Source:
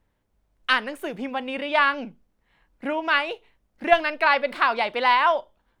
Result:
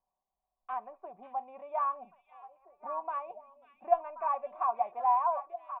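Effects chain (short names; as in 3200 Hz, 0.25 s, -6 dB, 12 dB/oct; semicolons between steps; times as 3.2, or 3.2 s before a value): vocal tract filter a; comb 5.2 ms, depth 46%; on a send: delay with a stepping band-pass 0.54 s, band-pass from 3400 Hz, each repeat -1.4 oct, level -6 dB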